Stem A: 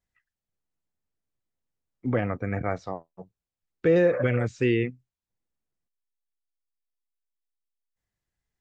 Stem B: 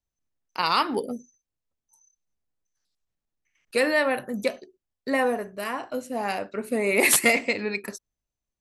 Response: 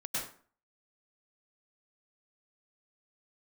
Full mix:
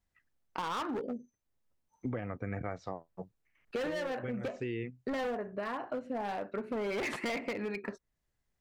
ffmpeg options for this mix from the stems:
-filter_complex "[0:a]volume=0.5dB[a];[1:a]lowpass=1.8k,asoftclip=type=hard:threshold=-25dB,volume=2.5dB,asplit=2[b][c];[c]apad=whole_len=379508[d];[a][d]sidechaincompress=threshold=-37dB:ratio=8:attack=16:release=445[e];[e][b]amix=inputs=2:normalize=0,acompressor=threshold=-34dB:ratio=6"

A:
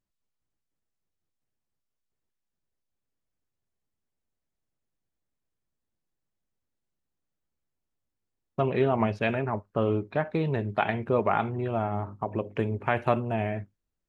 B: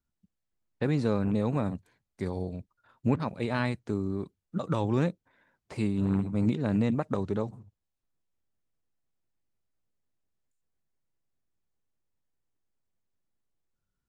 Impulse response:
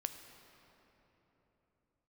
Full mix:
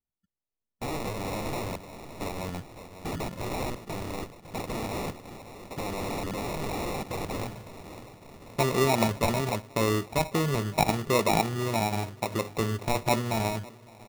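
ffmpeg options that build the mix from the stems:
-filter_complex "[0:a]agate=range=-33dB:threshold=-38dB:ratio=3:detection=peak,highshelf=f=2.5k:g=9,volume=-0.5dB,asplit=3[a][b][c];[b]volume=-18dB[d];[c]volume=-23.5dB[e];[1:a]agate=range=-9dB:threshold=-57dB:ratio=16:detection=peak,dynaudnorm=f=370:g=7:m=5dB,aeval=exprs='(mod(17.8*val(0)+1,2)-1)/17.8':c=same,volume=-2.5dB,asplit=2[f][g];[g]volume=-12.5dB[h];[2:a]atrim=start_sample=2205[i];[d][i]afir=irnorm=-1:irlink=0[j];[e][h]amix=inputs=2:normalize=0,aecho=0:1:557|1114|1671|2228|2785|3342|3899|4456|5013|5570:1|0.6|0.36|0.216|0.13|0.0778|0.0467|0.028|0.0168|0.0101[k];[a][f][j][k]amix=inputs=4:normalize=0,acrusher=samples=28:mix=1:aa=0.000001,asoftclip=type=tanh:threshold=-9dB"

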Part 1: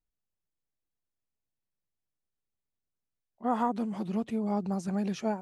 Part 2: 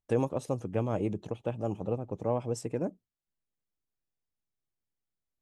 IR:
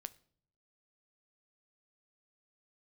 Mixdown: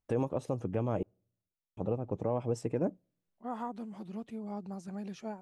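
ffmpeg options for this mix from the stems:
-filter_complex "[0:a]volume=-10.5dB,asplit=2[a][b];[b]volume=-18.5dB[c];[1:a]highshelf=f=4.3k:g=-9.5,volume=2dB,asplit=3[d][e][f];[d]atrim=end=1.03,asetpts=PTS-STARTPTS,afade=t=out:st=1.026:d=0.004:c=hsin[g];[e]atrim=start=1.03:end=1.77,asetpts=PTS-STARTPTS,volume=0[h];[f]atrim=start=1.77,asetpts=PTS-STARTPTS,afade=t=in:d=0.004:c=hsin[i];[g][h][i]concat=n=3:v=0:a=1,asplit=2[j][k];[k]volume=-18dB[l];[2:a]atrim=start_sample=2205[m];[c][l]amix=inputs=2:normalize=0[n];[n][m]afir=irnorm=-1:irlink=0[o];[a][j][o]amix=inputs=3:normalize=0,alimiter=limit=-20dB:level=0:latency=1:release=179"

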